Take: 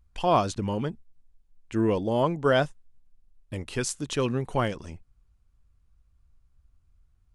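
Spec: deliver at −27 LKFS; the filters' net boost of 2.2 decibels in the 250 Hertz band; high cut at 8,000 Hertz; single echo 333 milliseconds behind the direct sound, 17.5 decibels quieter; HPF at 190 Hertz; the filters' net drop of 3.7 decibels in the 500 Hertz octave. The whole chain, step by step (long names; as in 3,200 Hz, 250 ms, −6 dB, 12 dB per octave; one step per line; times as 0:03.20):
high-pass filter 190 Hz
low-pass filter 8,000 Hz
parametric band 250 Hz +6.5 dB
parametric band 500 Hz −6.5 dB
single-tap delay 333 ms −17.5 dB
level +1 dB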